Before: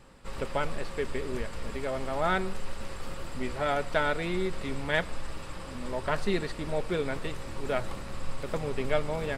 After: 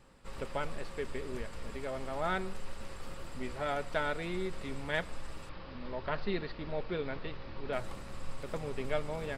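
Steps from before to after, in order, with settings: 5.49–7.73 steep low-pass 4900 Hz 48 dB/oct; gain -6 dB

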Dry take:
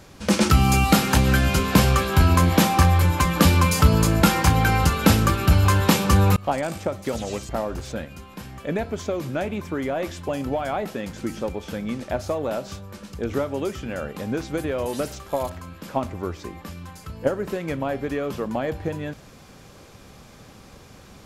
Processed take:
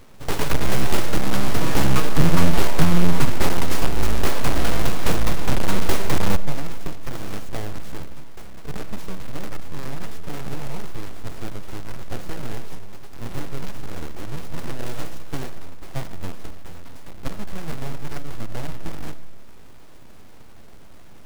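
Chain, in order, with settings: half-waves squared off; 1.61–3.3 bell 76 Hz +10 dB 0.42 oct; in parallel at -1.5 dB: limiter -9.5 dBFS, peak gain reduction 36.5 dB; on the sum: full-wave rectifier; on a send at -14 dB: reverb RT60 0.75 s, pre-delay 30 ms; on the sum: gain -8.5 dB

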